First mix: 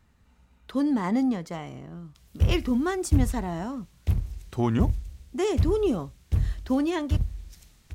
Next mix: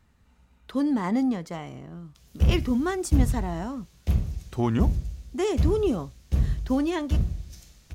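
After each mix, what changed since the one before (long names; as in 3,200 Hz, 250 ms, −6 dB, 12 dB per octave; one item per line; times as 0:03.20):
reverb: on, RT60 0.60 s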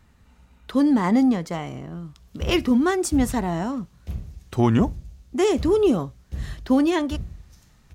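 speech +6.0 dB
background −8.0 dB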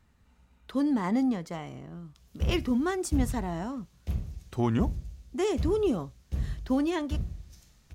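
speech −8.0 dB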